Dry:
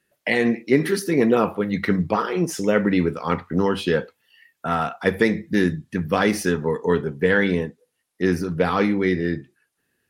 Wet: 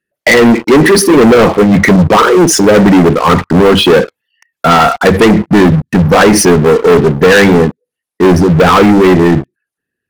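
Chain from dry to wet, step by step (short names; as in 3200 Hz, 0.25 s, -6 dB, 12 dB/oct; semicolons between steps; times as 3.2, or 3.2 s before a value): formant sharpening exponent 1.5; sample leveller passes 5; gain +4 dB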